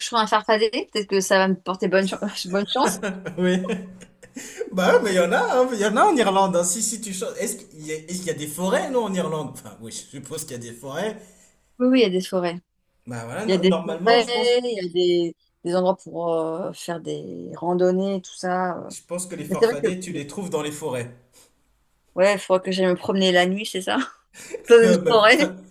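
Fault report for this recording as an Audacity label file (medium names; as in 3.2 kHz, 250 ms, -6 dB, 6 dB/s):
10.320000	10.560000	clipped -26 dBFS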